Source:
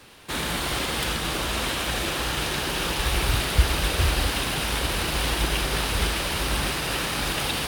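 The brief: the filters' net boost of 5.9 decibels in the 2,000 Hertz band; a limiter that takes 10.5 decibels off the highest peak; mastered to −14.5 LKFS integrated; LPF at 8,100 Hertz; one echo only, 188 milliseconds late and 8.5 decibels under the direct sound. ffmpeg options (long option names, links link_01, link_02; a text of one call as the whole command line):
ffmpeg -i in.wav -af "lowpass=8100,equalizer=frequency=2000:width_type=o:gain=7.5,alimiter=limit=-16dB:level=0:latency=1,aecho=1:1:188:0.376,volume=9.5dB" out.wav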